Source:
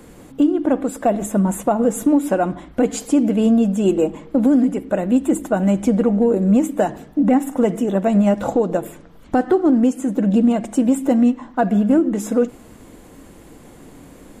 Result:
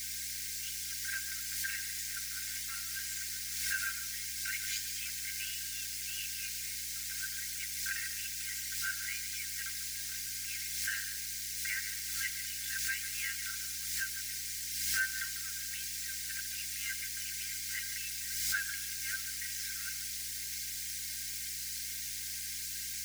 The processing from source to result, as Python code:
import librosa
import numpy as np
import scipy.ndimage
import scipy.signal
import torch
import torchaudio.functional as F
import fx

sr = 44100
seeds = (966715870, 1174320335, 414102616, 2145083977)

p1 = fx.air_absorb(x, sr, metres=170.0)
p2 = fx.dmg_noise_colour(p1, sr, seeds[0], colour='blue', level_db=-35.0)
p3 = scipy.signal.sosfilt(scipy.signal.cheby1(6, 6, 1500.0, 'highpass', fs=sr, output='sos'), p2)
p4 = p3 + fx.echo_single(p3, sr, ms=91, db=-11.0, dry=0)
p5 = fx.stretch_grains(p4, sr, factor=1.6, grain_ms=20.0)
p6 = fx.high_shelf(p5, sr, hz=11000.0, db=-7.5)
p7 = fx.add_hum(p6, sr, base_hz=60, snr_db=20)
p8 = fx.pre_swell(p7, sr, db_per_s=32.0)
y = F.gain(torch.from_numpy(p8), 4.5).numpy()